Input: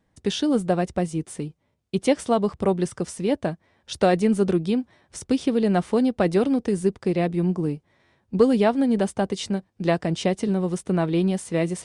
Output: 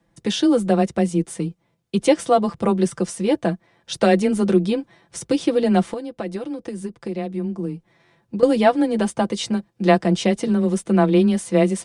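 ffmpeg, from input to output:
ffmpeg -i in.wav -filter_complex "[0:a]afreqshift=16,asettb=1/sr,asplit=3[link_01][link_02][link_03];[link_01]atrim=end=5.874[link_04];[link_02]atrim=start=5.87:end=8.43,asetpts=PTS-STARTPTS,afade=type=in:duration=0.004:curve=qsin,afade=type=out:start_time=2.556:duration=0.004:curve=qsin,acompressor=threshold=-29dB:ratio=6[link_05];[link_03]atrim=start=8.426[link_06];[link_04][link_05]acrossfade=duration=0.004:curve1=hsin:curve2=qsin[link_07];[link_07][link_06]acrossfade=duration=0.004:curve1=qsin:curve2=hsin,aecho=1:1:5.9:0.68,volume=2.5dB" out.wav

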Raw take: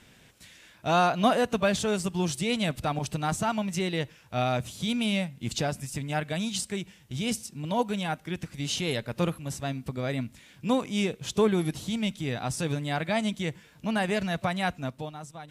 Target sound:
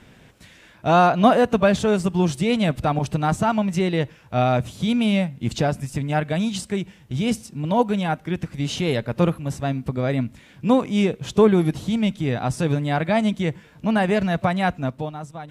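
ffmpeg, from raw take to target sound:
ffmpeg -i in.wav -af "highshelf=frequency=2500:gain=-11,volume=8.5dB" out.wav

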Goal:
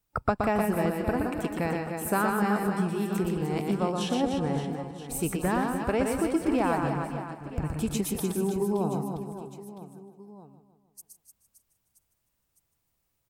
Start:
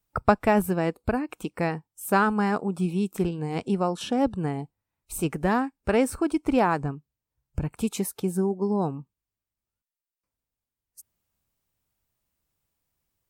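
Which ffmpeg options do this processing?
ffmpeg -i in.wav -filter_complex "[0:a]asplit=2[link_01][link_02];[link_02]aecho=0:1:153|306|459|612|765:0.2|0.106|0.056|0.0297|0.0157[link_03];[link_01][link_03]amix=inputs=2:normalize=0,acompressor=threshold=-27dB:ratio=2,asplit=2[link_04][link_05];[link_05]aecho=0:1:120|300|570|975|1582:0.631|0.398|0.251|0.158|0.1[link_06];[link_04][link_06]amix=inputs=2:normalize=0" out.wav

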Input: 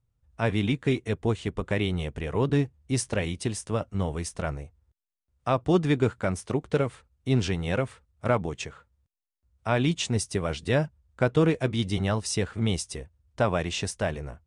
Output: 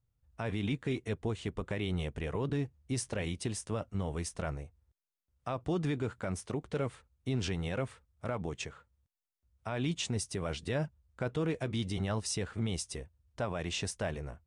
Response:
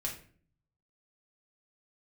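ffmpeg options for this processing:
-af "alimiter=limit=-20dB:level=0:latency=1:release=47,volume=-4.5dB"

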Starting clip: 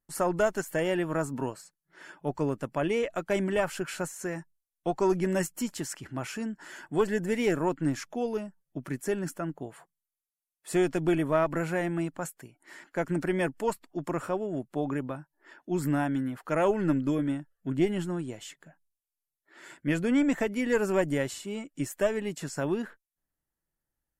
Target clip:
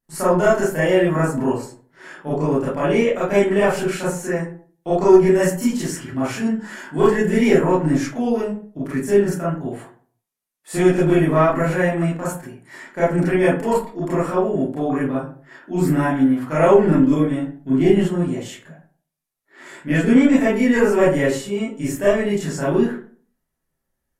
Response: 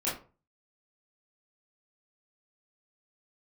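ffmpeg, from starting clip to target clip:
-filter_complex "[1:a]atrim=start_sample=2205,asetrate=32193,aresample=44100[link_01];[0:a][link_01]afir=irnorm=-1:irlink=0,volume=1dB"

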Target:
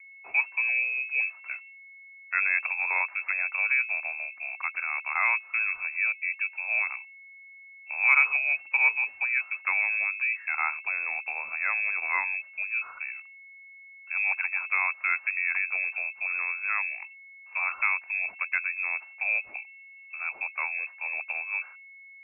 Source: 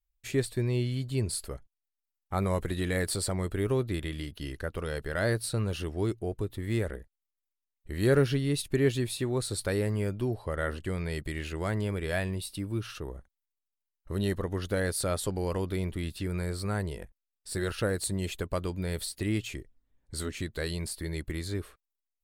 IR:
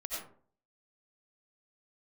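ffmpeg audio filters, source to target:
-filter_complex "[0:a]aeval=exprs='val(0)+0.00316*sin(2*PI*510*n/s)':channel_layout=same,lowpass=frequency=2300:width_type=q:width=0.5098,lowpass=frequency=2300:width_type=q:width=0.6013,lowpass=frequency=2300:width_type=q:width=0.9,lowpass=frequency=2300:width_type=q:width=2.563,afreqshift=-2700,acrossover=split=590 2100:gain=0.112 1 0.1[link_01][link_02][link_03];[link_01][link_02][link_03]amix=inputs=3:normalize=0,acrossover=split=450|1500[link_04][link_05][link_06];[link_06]acontrast=78[link_07];[link_04][link_05][link_07]amix=inputs=3:normalize=0,volume=3dB"

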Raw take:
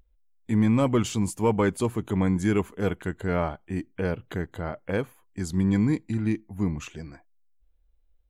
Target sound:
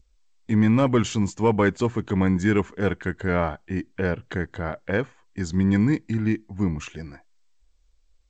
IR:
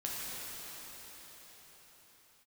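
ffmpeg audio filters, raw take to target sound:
-af "adynamicequalizer=threshold=0.00282:dfrequency=1700:dqfactor=3.1:tfrequency=1700:tqfactor=3.1:attack=5:release=100:ratio=0.375:range=3:mode=boostabove:tftype=bell,volume=2.5dB" -ar 16000 -c:a g722

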